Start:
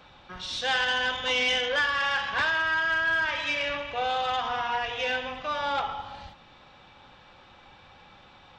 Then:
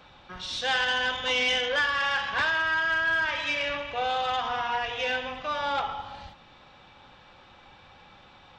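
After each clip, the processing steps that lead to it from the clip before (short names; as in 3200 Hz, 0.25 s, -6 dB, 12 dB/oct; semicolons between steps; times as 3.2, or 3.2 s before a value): nothing audible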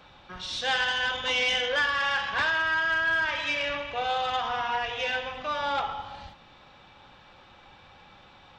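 de-hum 252.8 Hz, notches 32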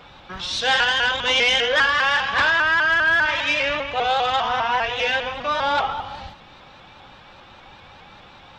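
shaped vibrato saw up 5 Hz, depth 100 cents; gain +7.5 dB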